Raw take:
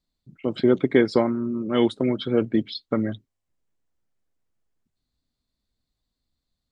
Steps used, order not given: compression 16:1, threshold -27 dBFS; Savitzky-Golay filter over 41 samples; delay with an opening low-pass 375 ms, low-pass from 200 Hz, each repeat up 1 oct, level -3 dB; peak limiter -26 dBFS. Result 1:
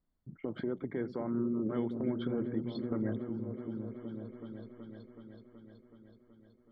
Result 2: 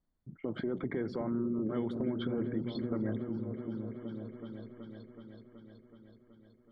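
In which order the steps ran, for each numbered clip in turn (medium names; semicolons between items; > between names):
Savitzky-Golay filter > compression > peak limiter > delay with an opening low-pass; Savitzky-Golay filter > peak limiter > delay with an opening low-pass > compression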